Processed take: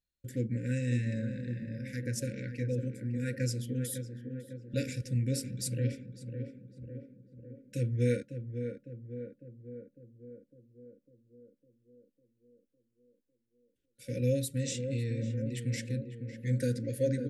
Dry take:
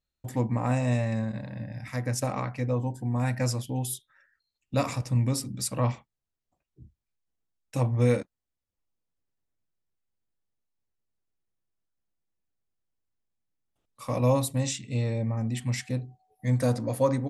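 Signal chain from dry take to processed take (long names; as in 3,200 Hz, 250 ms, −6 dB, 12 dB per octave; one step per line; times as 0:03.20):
tape delay 553 ms, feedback 74%, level −5.5 dB, low-pass 1,100 Hz
brick-wall band-stop 560–1,400 Hz
level −5.5 dB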